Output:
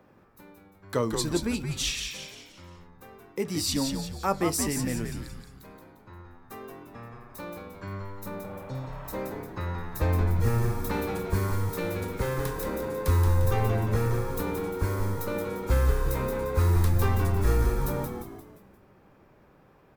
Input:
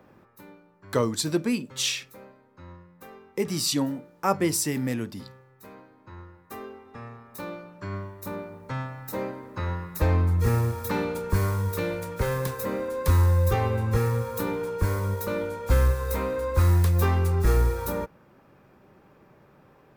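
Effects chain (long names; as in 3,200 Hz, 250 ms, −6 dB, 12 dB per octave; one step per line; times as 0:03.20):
echo with shifted repeats 175 ms, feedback 45%, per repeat −98 Hz, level −5.5 dB
healed spectral selection 0:08.48–0:09.07, 560–3,500 Hz both
level −3 dB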